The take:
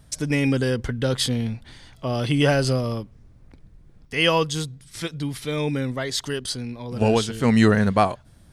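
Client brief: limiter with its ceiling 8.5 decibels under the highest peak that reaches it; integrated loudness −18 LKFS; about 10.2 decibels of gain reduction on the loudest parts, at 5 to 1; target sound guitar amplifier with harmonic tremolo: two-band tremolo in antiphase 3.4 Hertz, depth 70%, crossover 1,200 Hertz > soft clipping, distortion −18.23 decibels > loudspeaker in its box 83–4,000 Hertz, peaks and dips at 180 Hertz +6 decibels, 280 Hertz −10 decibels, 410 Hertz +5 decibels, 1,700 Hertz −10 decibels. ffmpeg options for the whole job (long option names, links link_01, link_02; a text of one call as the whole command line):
ffmpeg -i in.wav -filter_complex "[0:a]acompressor=threshold=-24dB:ratio=5,alimiter=limit=-21.5dB:level=0:latency=1,acrossover=split=1200[link_01][link_02];[link_01]aeval=exprs='val(0)*(1-0.7/2+0.7/2*cos(2*PI*3.4*n/s))':channel_layout=same[link_03];[link_02]aeval=exprs='val(0)*(1-0.7/2-0.7/2*cos(2*PI*3.4*n/s))':channel_layout=same[link_04];[link_03][link_04]amix=inputs=2:normalize=0,asoftclip=threshold=-25.5dB,highpass=83,equalizer=frequency=180:width_type=q:width=4:gain=6,equalizer=frequency=280:width_type=q:width=4:gain=-10,equalizer=frequency=410:width_type=q:width=4:gain=5,equalizer=frequency=1700:width_type=q:width=4:gain=-10,lowpass=frequency=4000:width=0.5412,lowpass=frequency=4000:width=1.3066,volume=19dB" out.wav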